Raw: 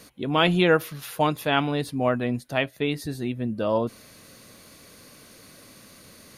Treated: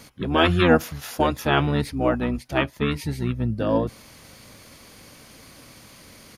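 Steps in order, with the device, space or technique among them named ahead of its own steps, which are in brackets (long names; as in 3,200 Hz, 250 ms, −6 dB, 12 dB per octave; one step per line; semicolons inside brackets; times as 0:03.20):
octave pedal (pitch-shifted copies added −12 semitones −1 dB)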